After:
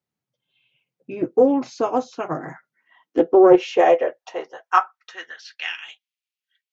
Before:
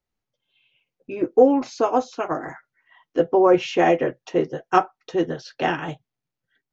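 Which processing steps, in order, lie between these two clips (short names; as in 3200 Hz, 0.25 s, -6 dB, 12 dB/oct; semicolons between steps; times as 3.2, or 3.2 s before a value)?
high-pass sweep 140 Hz -> 2700 Hz, 2.37–5.8; Doppler distortion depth 0.13 ms; gain -2 dB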